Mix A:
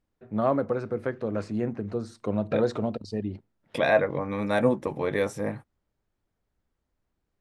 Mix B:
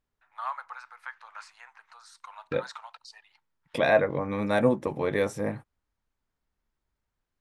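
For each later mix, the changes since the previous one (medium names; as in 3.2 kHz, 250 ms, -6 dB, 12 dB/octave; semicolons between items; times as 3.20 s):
first voice: add Chebyshev high-pass 880 Hz, order 5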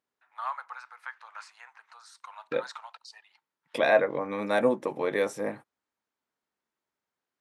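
master: add high-pass 270 Hz 12 dB/octave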